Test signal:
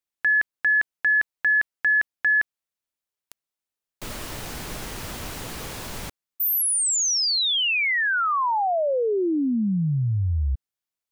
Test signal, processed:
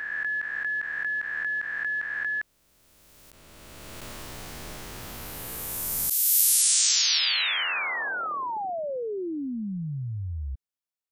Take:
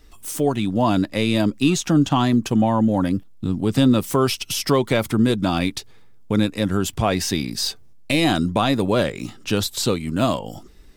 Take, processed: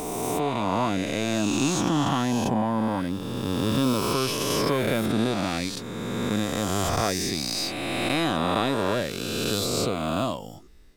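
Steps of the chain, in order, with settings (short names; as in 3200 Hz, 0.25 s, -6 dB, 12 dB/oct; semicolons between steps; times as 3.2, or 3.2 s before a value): spectral swells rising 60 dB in 2.83 s; gain -9.5 dB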